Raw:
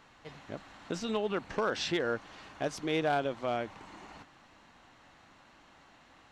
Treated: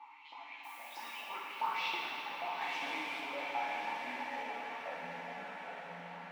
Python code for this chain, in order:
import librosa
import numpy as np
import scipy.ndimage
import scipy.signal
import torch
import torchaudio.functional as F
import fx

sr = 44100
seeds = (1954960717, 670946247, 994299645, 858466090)

p1 = scipy.signal.sosfilt(scipy.signal.butter(2, 170.0, 'highpass', fs=sr, output='sos'), x)
p2 = fx.over_compress(p1, sr, threshold_db=-38.0, ratio=-1.0)
p3 = p1 + F.gain(torch.from_numpy(p2), 0.0).numpy()
p4 = fx.quant_dither(p3, sr, seeds[0], bits=6, dither='triangular', at=(2.61, 3.2))
p5 = fx.vowel_filter(p4, sr, vowel='u')
p6 = fx.filter_lfo_highpass(p5, sr, shape='saw_up', hz=3.1, low_hz=770.0, high_hz=4700.0, q=3.5)
p7 = fx.echo_pitch(p6, sr, ms=385, semitones=-4, count=3, db_per_echo=-6.0)
p8 = fx.dmg_noise_colour(p7, sr, seeds[1], colour='blue', level_db=-65.0, at=(0.63, 1.18), fade=0.02)
p9 = p8 + fx.echo_diffused(p8, sr, ms=910, feedback_pct=51, wet_db=-6.5, dry=0)
p10 = fx.rev_fdn(p9, sr, rt60_s=2.6, lf_ratio=1.25, hf_ratio=1.0, size_ms=35.0, drr_db=-4.5)
y = F.gain(torch.from_numpy(p10), 1.5).numpy()